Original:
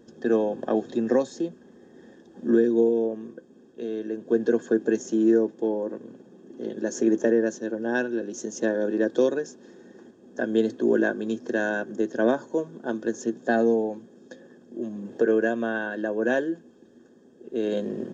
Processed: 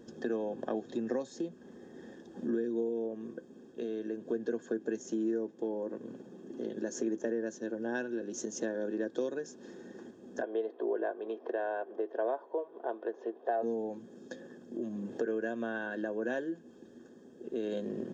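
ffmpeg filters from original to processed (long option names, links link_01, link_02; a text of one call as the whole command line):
ffmpeg -i in.wav -filter_complex "[0:a]asplit=3[link_01][link_02][link_03];[link_01]afade=type=out:start_time=10.41:duration=0.02[link_04];[link_02]highpass=frequency=380:width=0.5412,highpass=frequency=380:width=1.3066,equalizer=frequency=420:width_type=q:width=4:gain=4,equalizer=frequency=700:width_type=q:width=4:gain=9,equalizer=frequency=1000:width_type=q:width=4:gain=6,equalizer=frequency=1600:width_type=q:width=4:gain=-6,equalizer=frequency=2600:width_type=q:width=4:gain=-3,lowpass=frequency=2900:width=0.5412,lowpass=frequency=2900:width=1.3066,afade=type=in:start_time=10.41:duration=0.02,afade=type=out:start_time=13.62:duration=0.02[link_05];[link_03]afade=type=in:start_time=13.62:duration=0.02[link_06];[link_04][link_05][link_06]amix=inputs=3:normalize=0,acompressor=threshold=-36dB:ratio=2.5" out.wav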